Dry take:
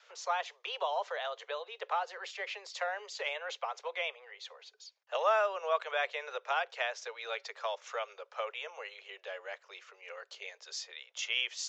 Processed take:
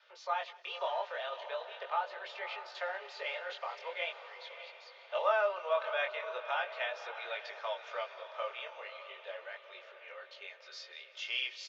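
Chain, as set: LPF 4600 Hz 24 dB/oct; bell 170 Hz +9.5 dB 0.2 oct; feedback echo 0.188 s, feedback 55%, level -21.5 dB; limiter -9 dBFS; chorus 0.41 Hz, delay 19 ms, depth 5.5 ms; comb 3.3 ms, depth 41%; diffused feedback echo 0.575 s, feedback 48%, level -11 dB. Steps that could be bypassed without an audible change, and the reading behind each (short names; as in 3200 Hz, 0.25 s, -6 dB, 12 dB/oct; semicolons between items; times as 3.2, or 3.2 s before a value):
bell 170 Hz: input band starts at 360 Hz; limiter -9 dBFS: input peak -17.5 dBFS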